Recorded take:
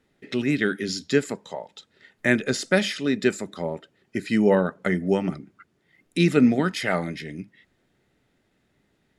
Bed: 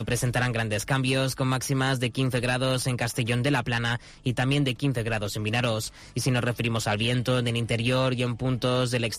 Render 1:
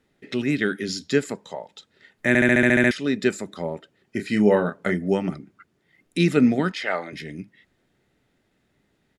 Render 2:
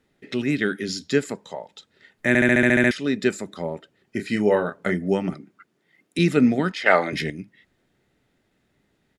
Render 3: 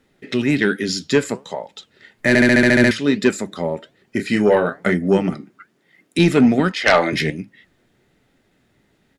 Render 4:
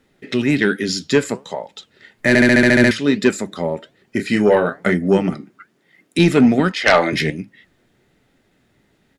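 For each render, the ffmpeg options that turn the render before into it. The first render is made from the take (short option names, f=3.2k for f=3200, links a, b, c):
-filter_complex "[0:a]asplit=3[a][b][c];[a]afade=t=out:st=4.18:d=0.02[d];[b]asplit=2[e][f];[f]adelay=29,volume=-6.5dB[g];[e][g]amix=inputs=2:normalize=0,afade=t=in:st=4.18:d=0.02,afade=t=out:st=4.93:d=0.02[h];[c]afade=t=in:st=4.93:d=0.02[i];[d][h][i]amix=inputs=3:normalize=0,asettb=1/sr,asplit=3[j][k][l];[j]atrim=end=6.724[m];[k]atrim=start=6.72:end=7.13,asetpts=PTS-STARTPTS,afade=t=in:d=0.004:c=qsin,afade=t=out:st=0.406:d=0.004:c=qsin,highpass=430,lowpass=4.9k[n];[l]atrim=start=7.126[o];[m][n]acrossfade=d=0.004:c1=hsin:c2=qsin[p];[p][o]acrossfade=d=0.004:c1=qsin:c2=hsin,asplit=10[q][r][s][t][u][v][w][x][y][z];[q]atrim=end=2.352[aa];[r]atrim=start=2.278:end=2.352[ab];[s]atrim=start=2.278:end=2.352[ac];[t]atrim=start=2.278:end=2.352[ad];[u]atrim=start=2.278:end=2.352[ae];[v]atrim=start=2.278:end=2.352[af];[w]atrim=start=2.278:end=2.352[ag];[x]atrim=start=2.278:end=2.352[ah];[y]atrim=start=2.278:end=2.352[ai];[z]atrim=start=2.908[aj];[aa][ab]acrossfade=d=0.004:c1=hsin:c2=hsin[ak];[ak][ac]acrossfade=d=0.004:c1=hsin:c2=hsin[al];[al][ad]acrossfade=d=0.004:c1=hsin:c2=hsin[am];[am][ae]acrossfade=d=0.004:c1=hsin:c2=hsin[an];[an][af]acrossfade=d=0.004:c1=hsin:c2=hsin[ao];[ao][ag]acrossfade=d=0.004:c1=hsin:c2=hsin[ap];[ap][ah]acrossfade=d=0.004:c1=hsin:c2=hsin[aq];[aq][ai]acrossfade=d=0.004:c1=hsin:c2=hsin[ar];[ar][aj]acrossfade=d=0.004:c1=hsin:c2=hsin"
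-filter_complex "[0:a]asettb=1/sr,asplit=3[a][b][c];[a]atrim=end=4.364[d];[b]atrim=start=4.36:end=4.77,asetpts=PTS-STARTPTS,afade=t=in:d=0.004:c=qsin,afade=t=out:st=0.406:d=0.004:c=qsin,equalizer=f=200:w=1.5:g=-6[e];[c]atrim=start=4.766[f];[d][e]acrossfade=d=0.004:c1=hsin:c2=qsin[g];[g][f]acrossfade=d=0.004:c1=qsin:c2=hsin,asettb=1/sr,asplit=3[h][i][j];[h]atrim=end=5.334[k];[i]atrim=start=5.33:end=6.19,asetpts=PTS-STARTPTS,afade=t=in:d=0.004:c=qsin,afade=t=out:st=0.856:d=0.004:c=qsin,highpass=170[l];[j]atrim=start=6.186[m];[k][l]acrossfade=d=0.004:c1=hsin:c2=qsin[n];[n][m]acrossfade=d=0.004:c1=qsin:c2=hsin,asplit=3[o][p][q];[o]atrim=end=6.862[r];[p]atrim=start=6.858:end=7.302,asetpts=PTS-STARTPTS,volume=9dB[s];[q]atrim=start=7.298[t];[r][s]acrossfade=d=0.004:c1=hsin:c2=hsin[u];[u][t]acrossfade=d=0.004:c1=hsin:c2=hsin"
-af "aeval=exprs='0.841*sin(PI/2*2.24*val(0)/0.841)':c=same,flanger=delay=3.6:depth=5.5:regen=79:speed=1.2:shape=sinusoidal"
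-af "volume=1dB"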